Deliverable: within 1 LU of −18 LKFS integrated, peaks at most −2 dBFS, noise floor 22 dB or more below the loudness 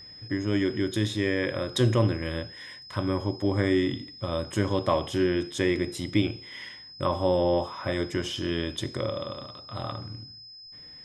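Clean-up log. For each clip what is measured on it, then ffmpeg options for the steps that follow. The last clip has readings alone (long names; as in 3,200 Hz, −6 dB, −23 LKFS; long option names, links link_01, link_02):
interfering tone 5,100 Hz; level of the tone −44 dBFS; integrated loudness −28.0 LKFS; sample peak −9.5 dBFS; target loudness −18.0 LKFS
→ -af "bandreject=frequency=5100:width=30"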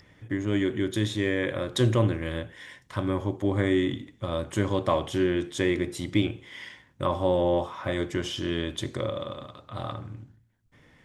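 interfering tone none found; integrated loudness −28.0 LKFS; sample peak −9.5 dBFS; target loudness −18.0 LKFS
→ -af "volume=10dB,alimiter=limit=-2dB:level=0:latency=1"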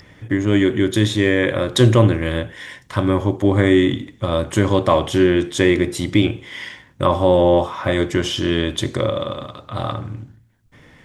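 integrated loudness −18.0 LKFS; sample peak −2.0 dBFS; background noise floor −51 dBFS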